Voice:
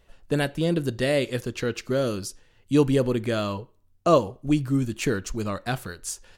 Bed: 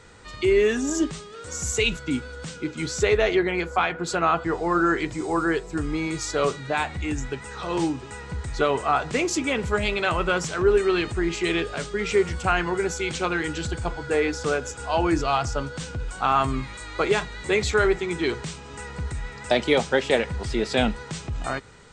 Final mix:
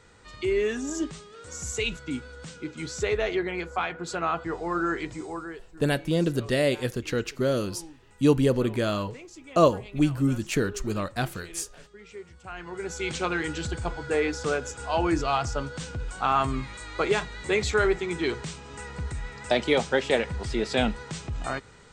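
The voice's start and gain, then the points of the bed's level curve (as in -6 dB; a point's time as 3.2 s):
5.50 s, -0.5 dB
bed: 5.17 s -6 dB
5.72 s -21.5 dB
12.38 s -21.5 dB
13.06 s -2.5 dB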